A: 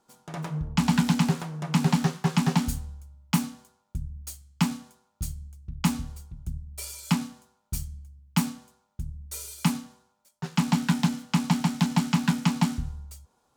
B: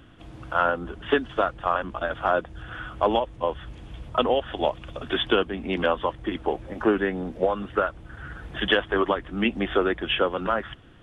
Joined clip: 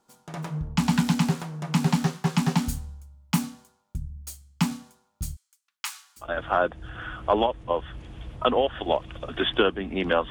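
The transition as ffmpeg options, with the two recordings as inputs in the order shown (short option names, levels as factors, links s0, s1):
-filter_complex "[0:a]asplit=3[s0][s1][s2];[s0]afade=t=out:st=5.35:d=0.02[s3];[s1]highpass=f=1200:w=0.5412,highpass=f=1200:w=1.3066,afade=t=in:st=5.35:d=0.02,afade=t=out:st=6.36:d=0.02[s4];[s2]afade=t=in:st=6.36:d=0.02[s5];[s3][s4][s5]amix=inputs=3:normalize=0,apad=whole_dur=10.3,atrim=end=10.3,atrim=end=6.36,asetpts=PTS-STARTPTS[s6];[1:a]atrim=start=1.89:end=6.03,asetpts=PTS-STARTPTS[s7];[s6][s7]acrossfade=d=0.2:c1=tri:c2=tri"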